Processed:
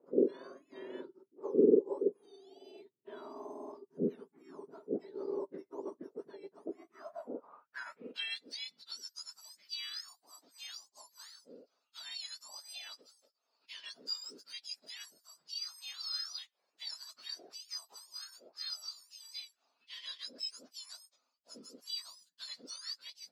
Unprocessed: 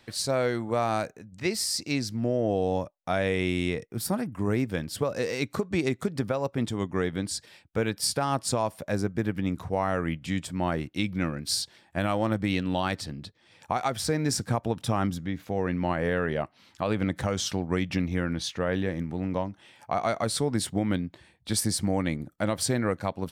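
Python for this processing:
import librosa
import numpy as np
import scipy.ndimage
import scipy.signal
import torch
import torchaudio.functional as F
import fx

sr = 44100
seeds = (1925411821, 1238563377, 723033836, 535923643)

y = fx.octave_mirror(x, sr, pivot_hz=1500.0)
y = fx.filter_sweep_bandpass(y, sr, from_hz=390.0, to_hz=4900.0, start_s=6.83, end_s=8.49, q=5.2)
y = fx.high_shelf(y, sr, hz=3800.0, db=-12.0)
y = F.gain(torch.from_numpy(y), 5.0).numpy()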